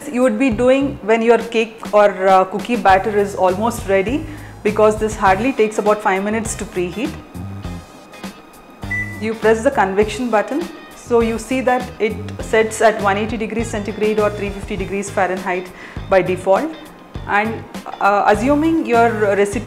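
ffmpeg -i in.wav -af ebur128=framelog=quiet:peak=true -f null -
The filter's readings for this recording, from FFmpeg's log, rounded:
Integrated loudness:
  I:         -16.8 LUFS
  Threshold: -27.4 LUFS
Loudness range:
  LRA:         5.6 LU
  Threshold: -37.8 LUFS
  LRA low:   -20.7 LUFS
  LRA high:  -15.0 LUFS
True peak:
  Peak:       -2.5 dBFS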